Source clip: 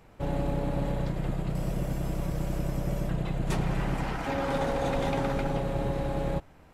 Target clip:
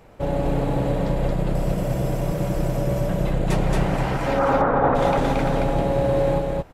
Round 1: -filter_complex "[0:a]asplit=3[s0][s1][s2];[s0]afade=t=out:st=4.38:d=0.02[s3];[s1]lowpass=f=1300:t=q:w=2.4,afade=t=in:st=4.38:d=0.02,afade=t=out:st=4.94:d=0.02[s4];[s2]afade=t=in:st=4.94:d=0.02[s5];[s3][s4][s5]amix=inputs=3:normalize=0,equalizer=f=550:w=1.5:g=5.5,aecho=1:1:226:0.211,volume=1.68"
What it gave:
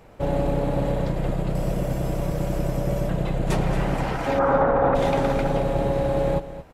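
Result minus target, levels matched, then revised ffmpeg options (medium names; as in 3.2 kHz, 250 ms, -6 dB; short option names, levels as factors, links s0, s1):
echo-to-direct -11.5 dB
-filter_complex "[0:a]asplit=3[s0][s1][s2];[s0]afade=t=out:st=4.38:d=0.02[s3];[s1]lowpass=f=1300:t=q:w=2.4,afade=t=in:st=4.38:d=0.02,afade=t=out:st=4.94:d=0.02[s4];[s2]afade=t=in:st=4.94:d=0.02[s5];[s3][s4][s5]amix=inputs=3:normalize=0,equalizer=f=550:w=1.5:g=5.5,aecho=1:1:226:0.794,volume=1.68"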